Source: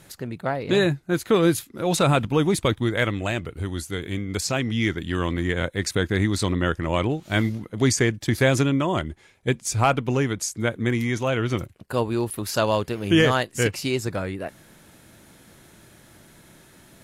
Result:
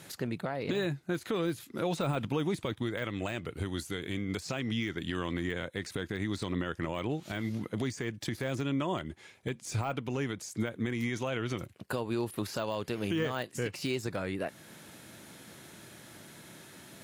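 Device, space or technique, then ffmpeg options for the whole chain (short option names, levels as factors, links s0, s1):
broadcast voice chain: -af "highpass=110,deesser=0.75,acompressor=threshold=0.0794:ratio=3,equalizer=f=3600:t=o:w=1.9:g=2.5,alimiter=limit=0.0794:level=0:latency=1:release=282"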